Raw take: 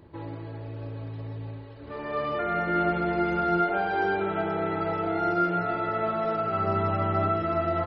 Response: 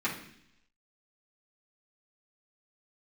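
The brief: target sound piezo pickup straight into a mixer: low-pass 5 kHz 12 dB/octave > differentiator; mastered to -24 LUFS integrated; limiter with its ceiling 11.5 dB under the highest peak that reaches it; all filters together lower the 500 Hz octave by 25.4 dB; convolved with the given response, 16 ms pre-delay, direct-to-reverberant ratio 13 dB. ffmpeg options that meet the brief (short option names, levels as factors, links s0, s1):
-filter_complex "[0:a]equalizer=f=500:t=o:g=-5.5,alimiter=level_in=1.33:limit=0.0631:level=0:latency=1,volume=0.75,asplit=2[s0][s1];[1:a]atrim=start_sample=2205,adelay=16[s2];[s1][s2]afir=irnorm=-1:irlink=0,volume=0.0891[s3];[s0][s3]amix=inputs=2:normalize=0,lowpass=5000,aderivative,volume=21.1"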